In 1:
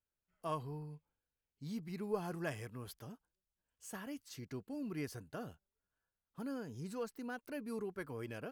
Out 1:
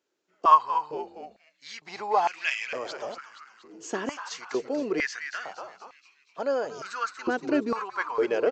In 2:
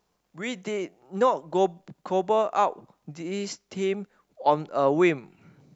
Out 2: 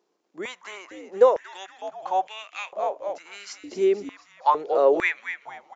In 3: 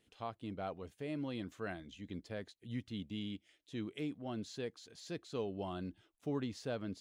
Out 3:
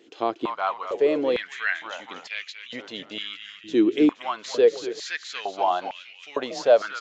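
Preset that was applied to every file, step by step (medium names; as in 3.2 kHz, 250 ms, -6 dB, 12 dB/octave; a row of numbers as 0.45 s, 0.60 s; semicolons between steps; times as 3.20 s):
frequency-shifting echo 236 ms, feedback 53%, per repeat -110 Hz, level -9 dB; resampled via 16 kHz; step-sequenced high-pass 2.2 Hz 340–2400 Hz; peak normalisation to -6 dBFS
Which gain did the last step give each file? +14.0 dB, -3.0 dB, +15.0 dB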